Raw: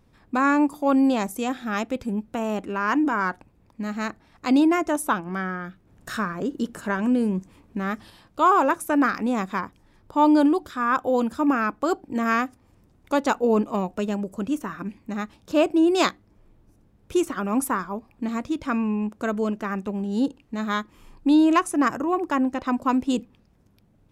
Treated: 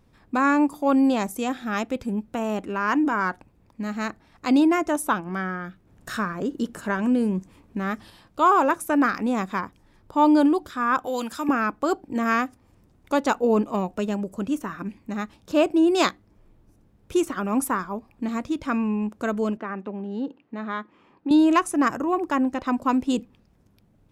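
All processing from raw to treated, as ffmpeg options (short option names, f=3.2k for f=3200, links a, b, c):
-filter_complex "[0:a]asettb=1/sr,asplit=3[a][b][c];[a]atrim=end=11.054[d];[b]atrim=start=11.05:end=11.49,asetpts=PTS-STARTPTS,afade=t=in:d=0.004:c=qsin,afade=t=out:st=0.436:d=0.004:c=qsin,tiltshelf=f=800:g=-8.5,acrossover=split=420|3000[e][f][g];[f]acompressor=threshold=-31dB:ratio=2:attack=3.2:release=140:knee=2.83:detection=peak[h];[e][h][g]amix=inputs=3:normalize=0[i];[c]atrim=start=11.486[j];[d][i]acrossfade=d=0.004:c1=hsin:c2=qsin[k];[k][j]acrossfade=d=0.004:c1=qsin:c2=hsin,asettb=1/sr,asplit=3[l][m][n];[l]atrim=end=19.574[o];[m]atrim=start=19.57:end=21.31,asetpts=PTS-STARTPTS,afade=t=in:d=0.004:c=qsin,afade=t=out:st=1.736:d=0.004:c=qsin,acompressor=threshold=-26dB:ratio=2:attack=3.2:release=140:knee=1:detection=peak,highpass=220,lowpass=2.5k[p];[n]atrim=start=21.306[q];[o][p]acrossfade=d=0.004:c1=hsin:c2=qsin[r];[r][q]acrossfade=d=0.004:c1=qsin:c2=hsin"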